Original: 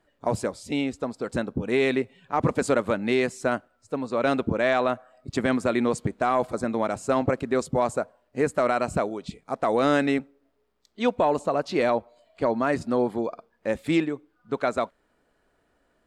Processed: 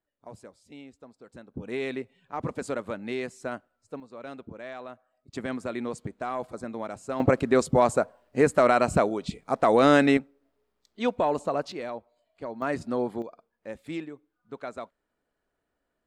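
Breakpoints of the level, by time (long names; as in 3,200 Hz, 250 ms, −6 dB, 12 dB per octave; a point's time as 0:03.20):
−19.5 dB
from 0:01.54 −9 dB
from 0:04.00 −17.5 dB
from 0:05.33 −9 dB
from 0:07.20 +3 dB
from 0:10.17 −3 dB
from 0:11.72 −12.5 dB
from 0:12.62 −4.5 dB
from 0:13.22 −12 dB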